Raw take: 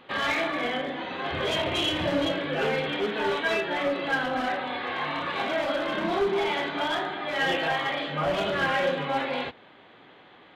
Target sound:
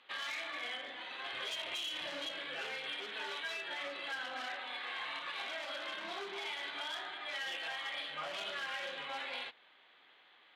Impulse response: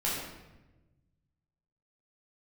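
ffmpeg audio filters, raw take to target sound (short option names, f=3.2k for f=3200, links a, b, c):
-af "aderivative,adynamicsmooth=sensitivity=7:basefreq=4.5k,alimiter=level_in=11dB:limit=-24dB:level=0:latency=1:release=105,volume=-11dB,volume=4dB"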